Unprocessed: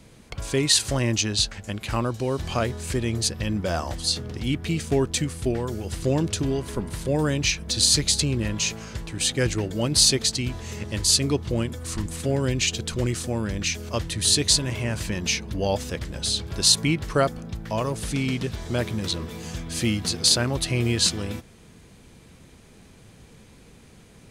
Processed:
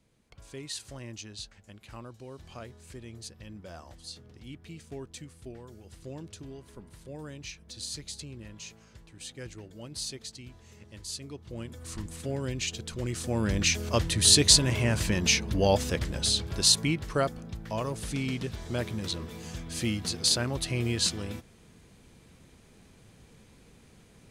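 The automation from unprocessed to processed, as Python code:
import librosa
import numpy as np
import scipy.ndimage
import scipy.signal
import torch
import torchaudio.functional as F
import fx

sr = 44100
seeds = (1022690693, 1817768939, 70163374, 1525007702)

y = fx.gain(x, sr, db=fx.line((11.36, -19.0), (11.81, -9.0), (13.01, -9.0), (13.5, 1.0), (16.01, 1.0), (17.03, -6.0)))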